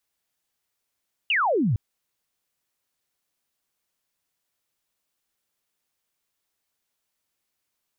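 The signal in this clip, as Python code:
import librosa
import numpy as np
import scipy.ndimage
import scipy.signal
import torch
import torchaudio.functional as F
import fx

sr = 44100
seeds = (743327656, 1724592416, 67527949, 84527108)

y = fx.laser_zap(sr, level_db=-19, start_hz=3000.0, end_hz=94.0, length_s=0.46, wave='sine')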